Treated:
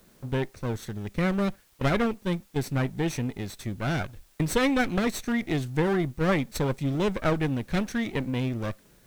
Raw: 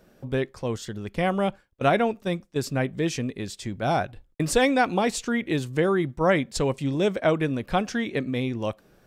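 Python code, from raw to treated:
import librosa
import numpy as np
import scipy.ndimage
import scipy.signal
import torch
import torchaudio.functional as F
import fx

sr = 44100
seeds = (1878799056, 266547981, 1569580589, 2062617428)

p1 = fx.lower_of_two(x, sr, delay_ms=0.49)
p2 = fx.quant_dither(p1, sr, seeds[0], bits=8, dither='triangular')
p3 = p1 + F.gain(torch.from_numpy(p2), -10.0).numpy()
p4 = fx.low_shelf(p3, sr, hz=220.0, db=3.5)
y = F.gain(torch.from_numpy(p4), -5.0).numpy()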